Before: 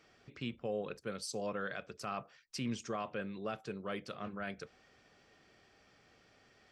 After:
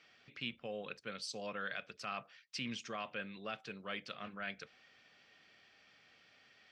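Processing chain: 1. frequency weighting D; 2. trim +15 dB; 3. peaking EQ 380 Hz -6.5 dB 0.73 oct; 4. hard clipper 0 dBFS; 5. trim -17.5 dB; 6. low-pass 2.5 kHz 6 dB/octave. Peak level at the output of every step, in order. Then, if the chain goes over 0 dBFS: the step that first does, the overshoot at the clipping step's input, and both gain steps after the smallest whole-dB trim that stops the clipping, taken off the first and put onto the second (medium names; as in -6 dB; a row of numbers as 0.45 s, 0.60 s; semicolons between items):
-20.0 dBFS, -5.0 dBFS, -5.0 dBFS, -5.0 dBFS, -22.5 dBFS, -25.5 dBFS; nothing clips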